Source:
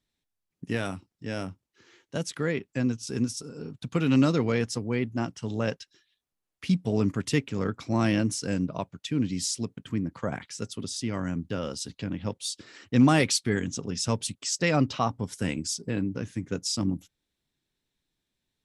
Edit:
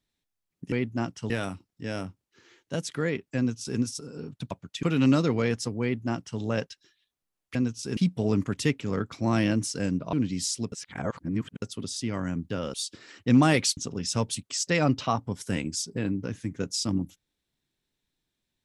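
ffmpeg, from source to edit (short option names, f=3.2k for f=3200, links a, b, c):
-filter_complex "[0:a]asplit=12[a][b][c][d][e][f][g][h][i][j][k][l];[a]atrim=end=0.722[m];[b]atrim=start=4.918:end=5.502[n];[c]atrim=start=0.718:end=3.932[o];[d]atrim=start=8.808:end=9.132[p];[e]atrim=start=3.928:end=6.652[q];[f]atrim=start=2.788:end=3.212[r];[g]atrim=start=6.648:end=8.812[s];[h]atrim=start=9.128:end=9.722[t];[i]atrim=start=9.718:end=10.622,asetpts=PTS-STARTPTS,areverse[u];[j]atrim=start=10.618:end=11.742[v];[k]atrim=start=12.398:end=13.432[w];[l]atrim=start=13.688[x];[m][n]acrossfade=d=0.004:c1=hsin:c2=hsin[y];[y][o]acrossfade=d=0.004:c1=hsin:c2=hsin[z];[z][p]acrossfade=d=0.004:c1=hsin:c2=hsin[aa];[aa][q]acrossfade=d=0.004:c1=hsin:c2=hsin[ab];[ab][r]acrossfade=d=0.004:c1=hsin:c2=hsin[ac];[ac][s]acrossfade=d=0.004:c1=hsin:c2=hsin[ad];[ad][t]acrossfade=d=0.004:c1=hsin:c2=hsin[ae];[ae][u]acrossfade=d=0.004:c1=hsin:c2=hsin[af];[af][v]acrossfade=d=0.004:c1=hsin:c2=hsin[ag];[ag][w]acrossfade=d=0.004:c1=hsin:c2=hsin[ah];[ah][x]acrossfade=d=0.004:c1=hsin:c2=hsin"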